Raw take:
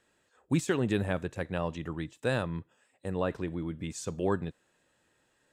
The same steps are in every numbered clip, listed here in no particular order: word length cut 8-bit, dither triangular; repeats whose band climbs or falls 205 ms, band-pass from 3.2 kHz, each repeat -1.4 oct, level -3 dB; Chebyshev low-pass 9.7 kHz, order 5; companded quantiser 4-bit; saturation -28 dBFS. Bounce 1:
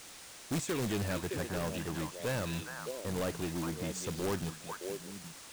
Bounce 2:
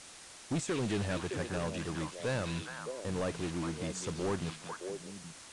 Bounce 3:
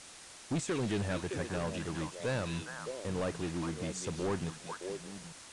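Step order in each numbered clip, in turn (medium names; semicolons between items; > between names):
repeats whose band climbs or falls > saturation > word length cut > Chebyshev low-pass > companded quantiser; companded quantiser > repeats whose band climbs or falls > saturation > word length cut > Chebyshev low-pass; repeats whose band climbs or falls > companded quantiser > word length cut > saturation > Chebyshev low-pass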